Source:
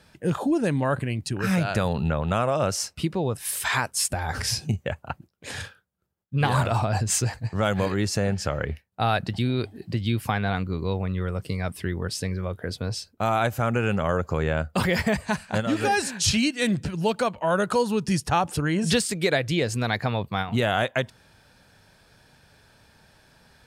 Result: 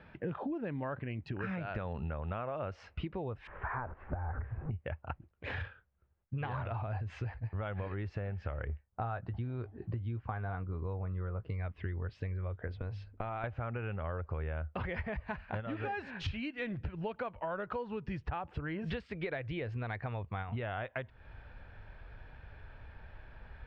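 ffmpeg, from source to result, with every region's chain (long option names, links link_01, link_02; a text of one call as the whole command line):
ffmpeg -i in.wav -filter_complex "[0:a]asettb=1/sr,asplit=3[link_01][link_02][link_03];[link_01]atrim=end=3.474[link_04];[link_02]atrim=start=3.47:end=4.71,asetpts=PTS-STARTPTS,afade=type=in:duration=0.004:curve=qsin,afade=type=out:start_time=1.236:duration=0.004:curve=qsin,aeval=exprs='val(0)+0.5*0.0282*sgn(val(0))':channel_layout=same,lowpass=frequency=1400:width=0.5412,lowpass=frequency=1400:width=1.3066[link_05];[link_03]atrim=start=4.706[link_06];[link_04][link_05]acrossfade=duration=0.004:curve1=hsin:curve2=qsin[link_07];[link_07][link_06]acrossfade=duration=0.004:curve1=qsin:curve2=hsin,asettb=1/sr,asplit=3[link_08][link_09][link_10];[link_08]atrim=end=8.674[link_11];[link_09]atrim=start=8.67:end=11.5,asetpts=PTS-STARTPTS,afade=type=in:duration=0.004:curve=qsin,afade=type=out:start_time=2.826:duration=0.004:curve=qsin,highshelf=frequency=1700:width_type=q:width=1.5:gain=-7,asplit=2[link_12][link_13];[link_13]adelay=17,volume=-12dB[link_14];[link_12][link_14]amix=inputs=2:normalize=0,atrim=end_sample=124803[link_15];[link_10]atrim=start=11.496[link_16];[link_11][link_15]acrossfade=duration=0.004:curve1=hsin:curve2=qsin[link_17];[link_17][link_16]acrossfade=duration=0.004:curve1=qsin:curve2=hsin,asettb=1/sr,asplit=3[link_18][link_19][link_20];[link_18]atrim=end=12.674[link_21];[link_19]atrim=start=12.67:end=13.44,asetpts=PTS-STARTPTS,afade=type=in:duration=0.004:curve=qsin,afade=type=out:start_time=0.766:duration=0.004:curve=qsin,bandreject=frequency=50:width_type=h:width=6,bandreject=frequency=100:width_type=h:width=6,bandreject=frequency=150:width_type=h:width=6,bandreject=frequency=200:width_type=h:width=6,bandreject=frequency=250:width_type=h:width=6,acompressor=threshold=-29dB:ratio=2.5:attack=3.2:release=140:knee=1:detection=peak[link_22];[link_20]atrim=start=13.436[link_23];[link_21][link_22]acrossfade=duration=0.004:curve1=hsin:curve2=qsin[link_24];[link_24][link_23]acrossfade=duration=0.004:curve1=qsin:curve2=hsin,lowpass=frequency=2600:width=0.5412,lowpass=frequency=2600:width=1.3066,asubboost=boost=9.5:cutoff=57,acompressor=threshold=-37dB:ratio=6,volume=1dB" out.wav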